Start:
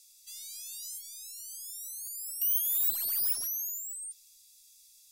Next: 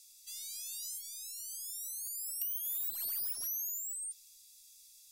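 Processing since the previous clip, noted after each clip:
downward compressor 12 to 1, threshold −34 dBFS, peak gain reduction 10.5 dB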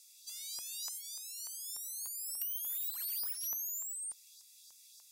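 auto-filter high-pass saw up 3.4 Hz 980–5,000 Hz
level −1.5 dB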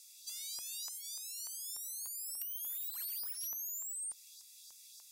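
downward compressor, threshold −41 dBFS, peak gain reduction 7 dB
level +2.5 dB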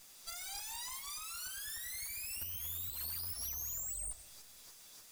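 lower of the sound and its delayed copy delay 8.7 ms
on a send at −10.5 dB: convolution reverb RT60 1.7 s, pre-delay 80 ms
on the sum: level +1.5 dB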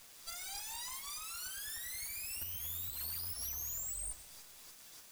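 bit reduction 9 bits

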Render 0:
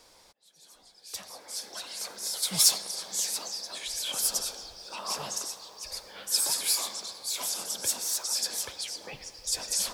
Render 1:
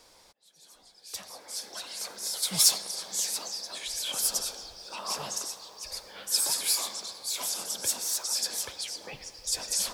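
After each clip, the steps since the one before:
no processing that can be heard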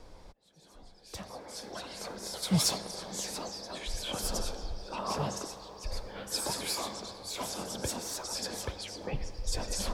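spectral tilt −4 dB per octave
level +2.5 dB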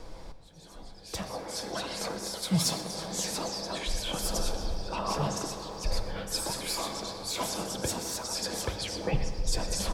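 echo with shifted repeats 125 ms, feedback 51%, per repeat +69 Hz, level −19 dB
speech leveller within 4 dB 0.5 s
rectangular room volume 3,300 cubic metres, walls mixed, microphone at 0.68 metres
level +2.5 dB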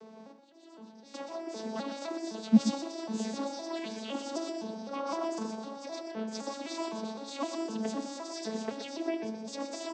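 vocoder with an arpeggio as carrier major triad, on A3, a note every 256 ms
single-tap delay 124 ms −10 dB

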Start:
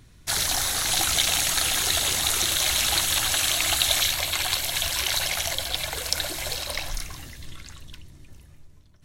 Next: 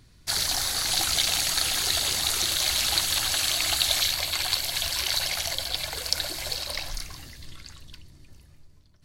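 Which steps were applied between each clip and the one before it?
parametric band 4,600 Hz +9 dB 0.26 octaves
level −3.5 dB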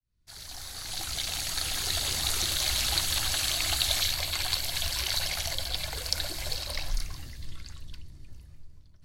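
fade in at the beginning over 2.28 s
low-shelf EQ 120 Hz +10.5 dB
level −3.5 dB

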